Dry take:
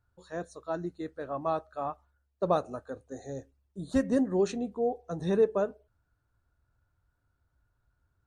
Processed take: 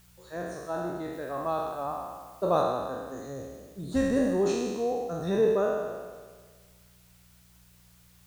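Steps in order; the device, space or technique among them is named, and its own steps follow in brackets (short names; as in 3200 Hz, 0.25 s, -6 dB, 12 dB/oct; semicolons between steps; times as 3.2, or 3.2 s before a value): spectral trails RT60 1.53 s; video cassette with head-switching buzz (buzz 60 Hz, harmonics 3, -59 dBFS -1 dB/oct; white noise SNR 31 dB); 1.13–2.62 high shelf 6400 Hz +4.5 dB; gain -1.5 dB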